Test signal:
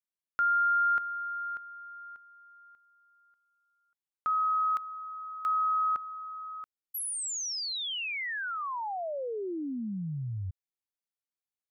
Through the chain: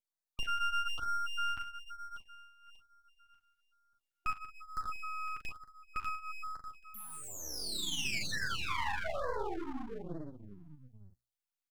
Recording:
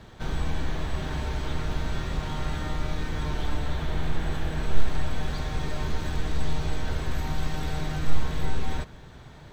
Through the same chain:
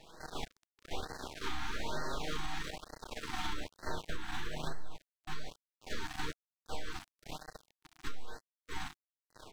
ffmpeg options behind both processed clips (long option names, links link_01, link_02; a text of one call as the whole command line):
ffmpeg -i in.wav -filter_complex "[0:a]equalizer=frequency=120:width_type=o:width=1.4:gain=-9,asplit=2[link_01][link_02];[link_02]adelay=39,volume=-7dB[link_03];[link_01][link_03]amix=inputs=2:normalize=0,aecho=1:1:57|69|187|509|595:0.422|0.398|0.158|0.178|0.631,acrossover=split=4600[link_04][link_05];[link_05]acompressor=threshold=-44dB:ratio=4:attack=1:release=60[link_06];[link_04][link_06]amix=inputs=2:normalize=0,bandreject=frequency=60:width_type=h:width=6,bandreject=frequency=120:width_type=h:width=6,bandreject=frequency=180:width_type=h:width=6,flanger=delay=6.1:depth=4.8:regen=-19:speed=0.39:shape=sinusoidal,asplit=2[link_07][link_08];[link_08]volume=10dB,asoftclip=hard,volume=-10dB,volume=-10dB[link_09];[link_07][link_09]amix=inputs=2:normalize=0,acompressor=threshold=-23dB:ratio=8:release=198:knee=6:detection=rms,lowshelf=frequency=190:gain=-11,aeval=exprs='max(val(0),0)':channel_layout=same,afftfilt=real='re*(1-between(b*sr/1024,460*pow(2900/460,0.5+0.5*sin(2*PI*1.1*pts/sr))/1.41,460*pow(2900/460,0.5+0.5*sin(2*PI*1.1*pts/sr))*1.41))':imag='im*(1-between(b*sr/1024,460*pow(2900/460,0.5+0.5*sin(2*PI*1.1*pts/sr))/1.41,460*pow(2900/460,0.5+0.5*sin(2*PI*1.1*pts/sr))*1.41))':win_size=1024:overlap=0.75,volume=2dB" out.wav